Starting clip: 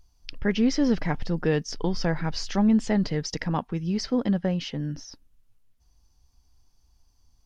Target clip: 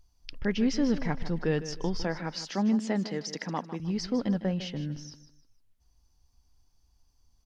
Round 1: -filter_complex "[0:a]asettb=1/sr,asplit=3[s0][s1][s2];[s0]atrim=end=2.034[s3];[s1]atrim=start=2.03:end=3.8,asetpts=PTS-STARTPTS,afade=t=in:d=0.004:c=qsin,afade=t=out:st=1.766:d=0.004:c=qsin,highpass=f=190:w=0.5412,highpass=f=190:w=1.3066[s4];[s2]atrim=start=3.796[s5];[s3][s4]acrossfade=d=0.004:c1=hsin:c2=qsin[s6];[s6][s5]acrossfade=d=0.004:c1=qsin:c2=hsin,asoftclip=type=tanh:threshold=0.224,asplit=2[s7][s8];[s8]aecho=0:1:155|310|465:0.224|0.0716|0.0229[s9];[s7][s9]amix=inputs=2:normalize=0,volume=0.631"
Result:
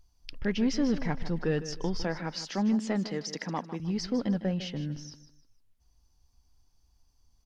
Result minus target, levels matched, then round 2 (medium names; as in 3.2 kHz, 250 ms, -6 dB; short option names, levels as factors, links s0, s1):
saturation: distortion +16 dB
-filter_complex "[0:a]asettb=1/sr,asplit=3[s0][s1][s2];[s0]atrim=end=2.034[s3];[s1]atrim=start=2.03:end=3.8,asetpts=PTS-STARTPTS,afade=t=in:d=0.004:c=qsin,afade=t=out:st=1.766:d=0.004:c=qsin,highpass=f=190:w=0.5412,highpass=f=190:w=1.3066[s4];[s2]atrim=start=3.796[s5];[s3][s4]acrossfade=d=0.004:c1=hsin:c2=qsin[s6];[s6][s5]acrossfade=d=0.004:c1=qsin:c2=hsin,asoftclip=type=tanh:threshold=0.631,asplit=2[s7][s8];[s8]aecho=0:1:155|310|465:0.224|0.0716|0.0229[s9];[s7][s9]amix=inputs=2:normalize=0,volume=0.631"